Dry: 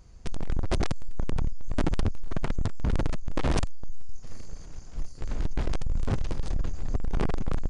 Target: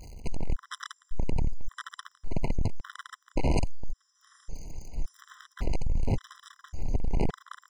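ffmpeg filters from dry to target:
-af "aeval=exprs='val(0)+0.5*0.0075*sgn(val(0))':c=same,afftfilt=real='re*gt(sin(2*PI*0.89*pts/sr)*(1-2*mod(floor(b*sr/1024/1000),2)),0)':imag='im*gt(sin(2*PI*0.89*pts/sr)*(1-2*mod(floor(b*sr/1024/1000),2)),0)':win_size=1024:overlap=0.75"

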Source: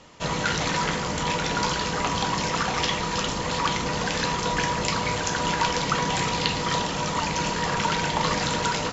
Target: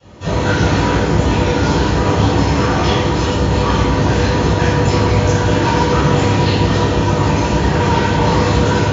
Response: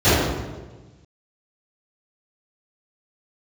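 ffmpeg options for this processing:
-filter_complex "[1:a]atrim=start_sample=2205,asetrate=42336,aresample=44100[a];[0:a][a]afir=irnorm=-1:irlink=0,volume=-17.5dB"

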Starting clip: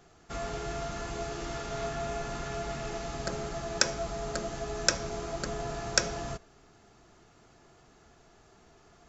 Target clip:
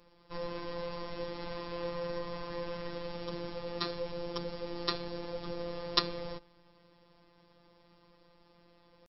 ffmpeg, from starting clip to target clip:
-af "asetrate=32097,aresample=44100,atempo=1.37395,afftfilt=real='hypot(re,im)*cos(PI*b)':imag='0':win_size=1024:overlap=0.75"

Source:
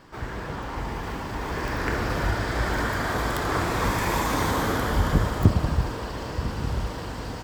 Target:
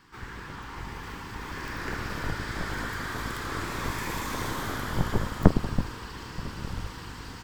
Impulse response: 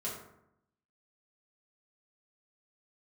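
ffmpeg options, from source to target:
-filter_complex "[0:a]acrossover=split=700[a][b];[a]aeval=exprs='0.708*(cos(1*acos(clip(val(0)/0.708,-1,1)))-cos(1*PI/2))+0.0794*(cos(3*acos(clip(val(0)/0.708,-1,1)))-cos(3*PI/2))+0.355*(cos(4*acos(clip(val(0)/0.708,-1,1)))-cos(4*PI/2))+0.126*(cos(7*acos(clip(val(0)/0.708,-1,1)))-cos(7*PI/2))':c=same[c];[b]asoftclip=type=tanh:threshold=-25.5dB[d];[c][d]amix=inputs=2:normalize=0,volume=-3dB"

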